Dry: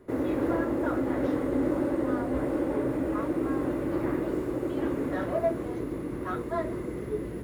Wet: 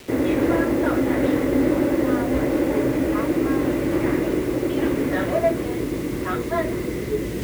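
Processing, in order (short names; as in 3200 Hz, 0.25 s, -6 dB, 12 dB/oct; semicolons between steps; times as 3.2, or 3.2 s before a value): air absorption 150 m; bit-crush 9-bit; reverse; upward compressor, threshold -32 dBFS; reverse; resonant high shelf 1700 Hz +6.5 dB, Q 1.5; gain +8 dB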